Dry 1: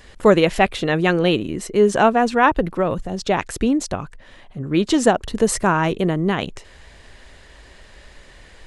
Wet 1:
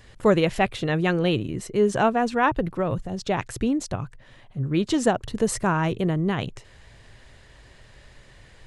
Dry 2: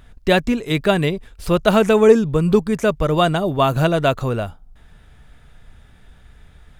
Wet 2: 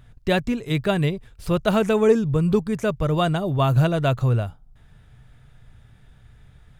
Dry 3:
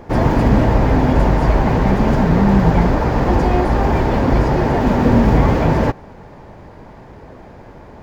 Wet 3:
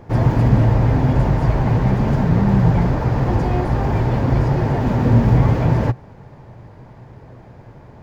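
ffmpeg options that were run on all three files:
-af "equalizer=frequency=120:width=2.3:gain=12.5,volume=-6dB"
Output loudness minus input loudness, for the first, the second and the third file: −5.0, −4.0, −2.0 LU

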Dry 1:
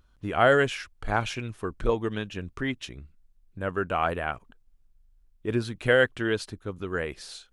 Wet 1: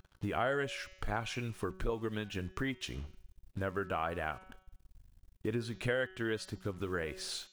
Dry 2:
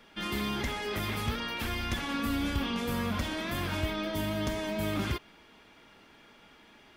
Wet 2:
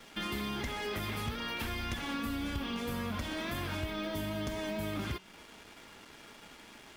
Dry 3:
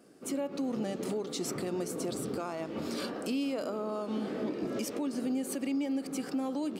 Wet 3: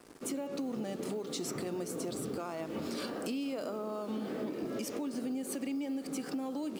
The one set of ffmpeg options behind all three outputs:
-af "acrusher=bits=8:mix=0:aa=0.5,bandreject=frequency=187.6:width_type=h:width=4,bandreject=frequency=375.2:width_type=h:width=4,bandreject=frequency=562.8:width_type=h:width=4,bandreject=frequency=750.4:width_type=h:width=4,bandreject=frequency=938:width_type=h:width=4,bandreject=frequency=1125.6:width_type=h:width=4,bandreject=frequency=1313.2:width_type=h:width=4,bandreject=frequency=1500.8:width_type=h:width=4,bandreject=frequency=1688.4:width_type=h:width=4,bandreject=frequency=1876:width_type=h:width=4,bandreject=frequency=2063.6:width_type=h:width=4,bandreject=frequency=2251.2:width_type=h:width=4,bandreject=frequency=2438.8:width_type=h:width=4,bandreject=frequency=2626.4:width_type=h:width=4,bandreject=frequency=2814:width_type=h:width=4,bandreject=frequency=3001.6:width_type=h:width=4,bandreject=frequency=3189.2:width_type=h:width=4,bandreject=frequency=3376.8:width_type=h:width=4,bandreject=frequency=3564.4:width_type=h:width=4,bandreject=frequency=3752:width_type=h:width=4,bandreject=frequency=3939.6:width_type=h:width=4,bandreject=frequency=4127.2:width_type=h:width=4,bandreject=frequency=4314.8:width_type=h:width=4,bandreject=frequency=4502.4:width_type=h:width=4,bandreject=frequency=4690:width_type=h:width=4,bandreject=frequency=4877.6:width_type=h:width=4,bandreject=frequency=5065.2:width_type=h:width=4,bandreject=frequency=5252.8:width_type=h:width=4,bandreject=frequency=5440.4:width_type=h:width=4,bandreject=frequency=5628:width_type=h:width=4,bandreject=frequency=5815.6:width_type=h:width=4,bandreject=frequency=6003.2:width_type=h:width=4,bandreject=frequency=6190.8:width_type=h:width=4,bandreject=frequency=6378.4:width_type=h:width=4,bandreject=frequency=6566:width_type=h:width=4,bandreject=frequency=6753.6:width_type=h:width=4,bandreject=frequency=6941.2:width_type=h:width=4,bandreject=frequency=7128.8:width_type=h:width=4,bandreject=frequency=7316.4:width_type=h:width=4,acompressor=threshold=-40dB:ratio=3,volume=4dB"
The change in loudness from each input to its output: −10.0, −4.0, −3.0 LU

